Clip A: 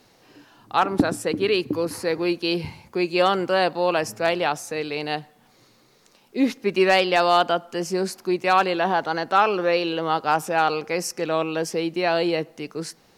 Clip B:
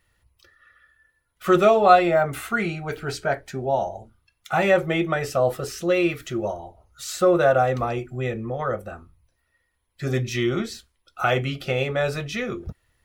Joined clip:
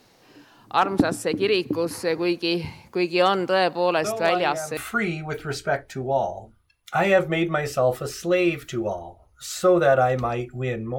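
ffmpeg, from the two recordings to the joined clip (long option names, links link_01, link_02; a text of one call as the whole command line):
ffmpeg -i cue0.wav -i cue1.wav -filter_complex "[1:a]asplit=2[link_01][link_02];[0:a]apad=whole_dur=10.98,atrim=end=10.98,atrim=end=4.772[link_03];[link_02]atrim=start=2.348:end=8.56[link_04];[link_01]atrim=start=1.62:end=2.35,asetpts=PTS-STARTPTS,volume=-12.5dB,afade=type=in:duration=0.004:curve=hsin,afade=type=out:start_time=0.726:duration=0.004:curve=hsin,adelay=4040[link_05];[link_03][link_04]acrossfade=duration=0.004:curve1=hsin:curve2=hsin[link_06];[link_06][link_05]amix=inputs=2:normalize=0" out.wav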